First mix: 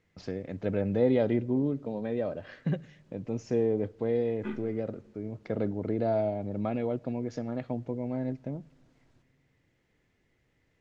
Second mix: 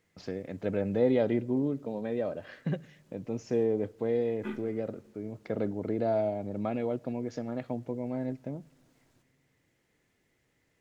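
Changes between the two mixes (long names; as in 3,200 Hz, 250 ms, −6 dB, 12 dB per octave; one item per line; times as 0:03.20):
second voice: remove high-frequency loss of the air 83 metres
master: add low-shelf EQ 96 Hz −9 dB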